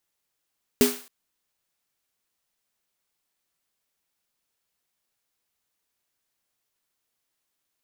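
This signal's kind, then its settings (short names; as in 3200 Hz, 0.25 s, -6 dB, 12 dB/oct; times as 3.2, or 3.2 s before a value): snare drum length 0.27 s, tones 250 Hz, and 410 Hz, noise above 590 Hz, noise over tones -6 dB, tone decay 0.28 s, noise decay 0.47 s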